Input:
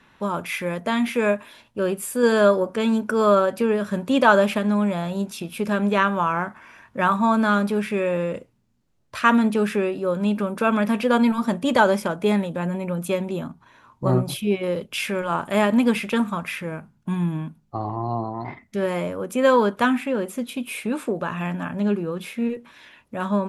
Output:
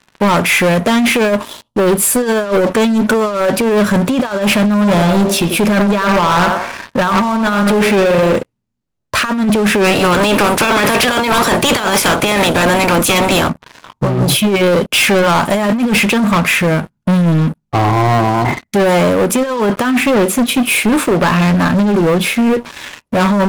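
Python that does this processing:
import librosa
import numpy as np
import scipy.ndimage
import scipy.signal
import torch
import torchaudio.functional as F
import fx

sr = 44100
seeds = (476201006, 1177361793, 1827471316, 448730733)

y = fx.spec_box(x, sr, start_s=1.31, length_s=0.71, low_hz=1400.0, high_hz=2800.0, gain_db=-13)
y = fx.echo_banded(y, sr, ms=90, feedback_pct=41, hz=670.0, wet_db=-6.0, at=(4.8, 8.36), fade=0.02)
y = fx.spec_clip(y, sr, under_db=22, at=(9.83, 13.48), fade=0.02)
y = fx.over_compress(y, sr, threshold_db=-23.0, ratio=-0.5)
y = fx.leveller(y, sr, passes=5)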